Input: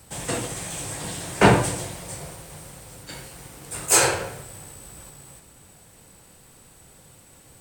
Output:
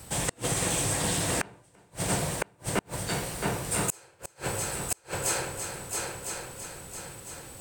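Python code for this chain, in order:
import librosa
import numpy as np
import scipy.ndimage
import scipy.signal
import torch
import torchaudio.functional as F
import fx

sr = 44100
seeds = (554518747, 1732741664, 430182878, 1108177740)

y = fx.echo_heads(x, sr, ms=335, heads='first and third', feedback_pct=52, wet_db=-10.5)
y = fx.gate_flip(y, sr, shuts_db=-16.0, range_db=-39)
y = y * 10.0 ** (4.0 / 20.0)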